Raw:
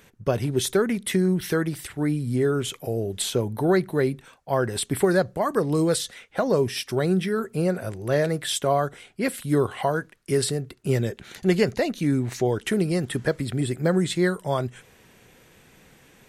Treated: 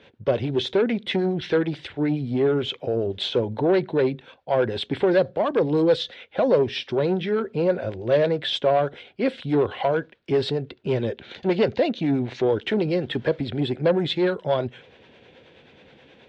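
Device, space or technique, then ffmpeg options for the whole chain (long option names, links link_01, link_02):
guitar amplifier with harmonic tremolo: -filter_complex "[0:a]acrossover=split=420[link_01][link_02];[link_01]aeval=exprs='val(0)*(1-0.5/2+0.5/2*cos(2*PI*9.4*n/s))':channel_layout=same[link_03];[link_02]aeval=exprs='val(0)*(1-0.5/2-0.5/2*cos(2*PI*9.4*n/s))':channel_layout=same[link_04];[link_03][link_04]amix=inputs=2:normalize=0,asoftclip=type=tanh:threshold=-20dB,highpass=86,equalizer=frequency=120:width_type=q:width=4:gain=-5,equalizer=frequency=180:width_type=q:width=4:gain=-6,equalizer=frequency=530:width_type=q:width=4:gain=5,equalizer=frequency=1200:width_type=q:width=4:gain=-7,equalizer=frequency=1900:width_type=q:width=4:gain=-4,equalizer=frequency=3500:width_type=q:width=4:gain=4,lowpass=frequency=3800:width=0.5412,lowpass=frequency=3800:width=1.3066,volume=6dB"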